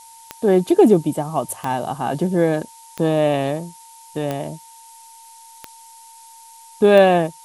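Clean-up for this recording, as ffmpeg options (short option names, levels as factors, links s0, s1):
-af "adeclick=t=4,bandreject=f=910:w=30,afftdn=nr=18:nf=-44"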